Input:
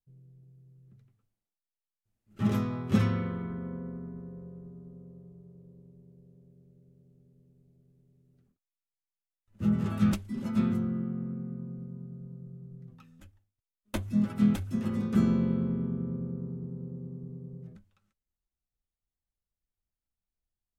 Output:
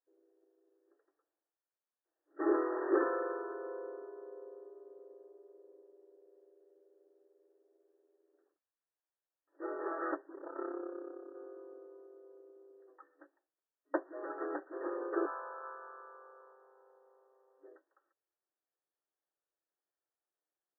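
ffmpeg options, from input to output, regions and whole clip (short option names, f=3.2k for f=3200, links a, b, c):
-filter_complex "[0:a]asettb=1/sr,asplit=3[a][b][c];[a]atrim=end=2.404[d];[b]atrim=start=2.4:end=3.03,asetpts=PTS-STARTPTS,afade=t=in:d=0.004:c=qsin,afade=t=out:st=0.626:d=0.004:c=qsin,lowshelf=f=390:t=q:w=1.5:g=10,aeval=exprs='val(0)*gte(abs(val(0)),0.0188)':c=same[e];[c]atrim=start=3.026[f];[d][e]acrossfade=d=0.004:c1=hsin:c2=qsin[g];[g][f]acrossfade=d=0.004:c1=qsin:c2=hsin,asettb=1/sr,asplit=3[h][i][j];[h]atrim=end=10.354[k];[i]atrim=start=10.35:end=11.35,asetpts=PTS-STARTPTS,afade=t=in:d=0.004:c=qsin,afade=t=out:st=0.996:d=0.004:c=qsin,lowpass=1.6k,tremolo=f=33:d=0.857,asplit=2[l][m];[m]adelay=46,volume=-12.5dB[n];[l][n]amix=inputs=2:normalize=0,atrim=end_sample=44100[o];[j]atrim=start=11.346[p];[k][o]acrossfade=d=0.004:c1=hsin:c2=qsin[q];[q][p]acrossfade=d=0.004:c1=qsin:c2=hsin,asettb=1/sr,asplit=3[r][s][t];[r]atrim=end=15.264[u];[s]atrim=start=15.26:end=17.64,asetpts=PTS-STARTPTS,afade=t=in:d=0.004:c=qsin,afade=t=out:st=2.376:d=0.004:c=qsin,highpass=f=810:w=0.5412,highpass=f=810:w=1.3066,asplit=2[v][w];[w]highpass=f=720:p=1,volume=12dB,asoftclip=type=tanh:threshold=-30dB[x];[v][x]amix=inputs=2:normalize=0,lowpass=f=1.6k:p=1,volume=-6dB,aecho=1:1:374:0.316,atrim=end_sample=104958[y];[t]atrim=start=17.636[z];[u][y]acrossfade=d=0.004:c1=hsin:c2=qsin[aa];[aa][z]acrossfade=d=0.004:c1=qsin:c2=hsin,afftfilt=real='re*between(b*sr/4096,280,1900)':imag='im*between(b*sr/4096,280,1900)':win_size=4096:overlap=0.75,equalizer=f=550:t=o:w=0.77:g=3,volume=3dB"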